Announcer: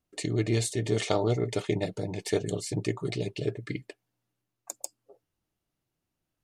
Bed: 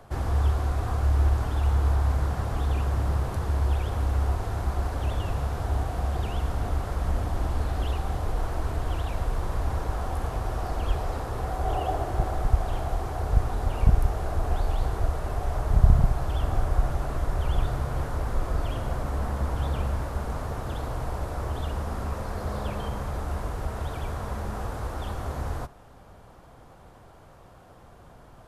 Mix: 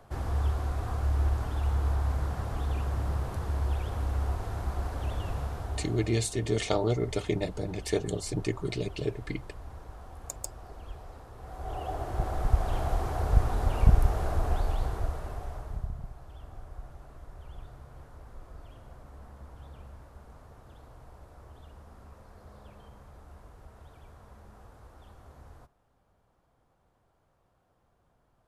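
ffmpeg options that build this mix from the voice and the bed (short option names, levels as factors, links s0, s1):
-filter_complex "[0:a]adelay=5600,volume=0.891[s0];[1:a]volume=3.55,afade=t=out:st=5.39:d=0.84:silence=0.266073,afade=t=in:st=11.38:d=1.48:silence=0.158489,afade=t=out:st=14.23:d=1.67:silence=0.105925[s1];[s0][s1]amix=inputs=2:normalize=0"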